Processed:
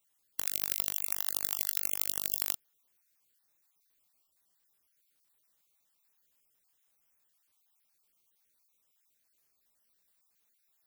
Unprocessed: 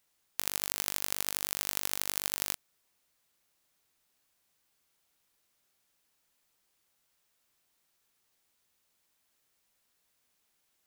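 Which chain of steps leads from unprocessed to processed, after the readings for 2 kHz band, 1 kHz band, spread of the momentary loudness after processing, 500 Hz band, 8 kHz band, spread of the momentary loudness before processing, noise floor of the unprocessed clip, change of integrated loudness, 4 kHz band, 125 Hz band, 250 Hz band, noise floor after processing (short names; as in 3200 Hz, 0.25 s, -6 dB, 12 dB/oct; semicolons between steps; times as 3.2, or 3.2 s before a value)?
-6.0 dB, -6.5 dB, 4 LU, -5.0 dB, -1.5 dB, 4 LU, -76 dBFS, +1.5 dB, -4.5 dB, -5.0 dB, -5.0 dB, -76 dBFS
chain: random spectral dropouts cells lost 38%; high shelf 10000 Hz +10.5 dB; gain -3.5 dB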